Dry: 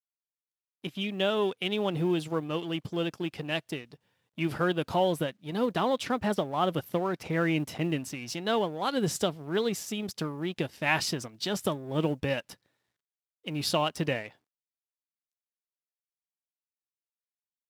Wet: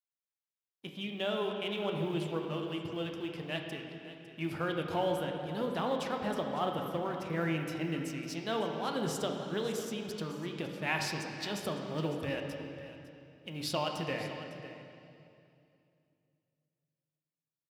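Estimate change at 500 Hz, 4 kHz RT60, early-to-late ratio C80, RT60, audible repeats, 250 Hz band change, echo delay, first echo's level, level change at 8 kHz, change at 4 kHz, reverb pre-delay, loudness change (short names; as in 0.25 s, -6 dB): -5.0 dB, 2.3 s, 4.5 dB, 2.6 s, 1, -5.5 dB, 0.554 s, -15.0 dB, -6.5 dB, -5.5 dB, 11 ms, -5.5 dB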